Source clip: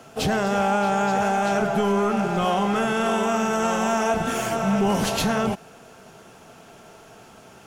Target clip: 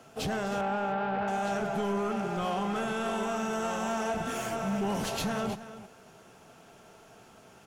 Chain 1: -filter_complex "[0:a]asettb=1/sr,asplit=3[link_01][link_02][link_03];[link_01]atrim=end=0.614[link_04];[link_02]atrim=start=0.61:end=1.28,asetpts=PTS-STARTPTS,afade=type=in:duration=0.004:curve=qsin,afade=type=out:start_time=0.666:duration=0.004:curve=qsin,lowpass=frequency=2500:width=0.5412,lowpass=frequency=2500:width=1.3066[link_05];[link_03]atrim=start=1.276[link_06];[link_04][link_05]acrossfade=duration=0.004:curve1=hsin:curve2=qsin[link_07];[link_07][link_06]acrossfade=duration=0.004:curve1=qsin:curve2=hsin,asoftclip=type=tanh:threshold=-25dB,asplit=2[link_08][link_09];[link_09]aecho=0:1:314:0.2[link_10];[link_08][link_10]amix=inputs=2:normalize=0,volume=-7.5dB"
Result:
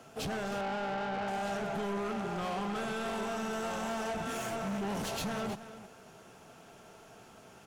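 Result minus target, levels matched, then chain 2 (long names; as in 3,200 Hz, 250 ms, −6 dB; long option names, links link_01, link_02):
soft clipping: distortion +9 dB
-filter_complex "[0:a]asettb=1/sr,asplit=3[link_01][link_02][link_03];[link_01]atrim=end=0.614[link_04];[link_02]atrim=start=0.61:end=1.28,asetpts=PTS-STARTPTS,afade=type=in:duration=0.004:curve=qsin,afade=type=out:start_time=0.666:duration=0.004:curve=qsin,lowpass=frequency=2500:width=0.5412,lowpass=frequency=2500:width=1.3066[link_05];[link_03]atrim=start=1.276[link_06];[link_04][link_05]acrossfade=duration=0.004:curve1=hsin:curve2=qsin[link_07];[link_07][link_06]acrossfade=duration=0.004:curve1=qsin:curve2=hsin,asoftclip=type=tanh:threshold=-16.5dB,asplit=2[link_08][link_09];[link_09]aecho=0:1:314:0.2[link_10];[link_08][link_10]amix=inputs=2:normalize=0,volume=-7.5dB"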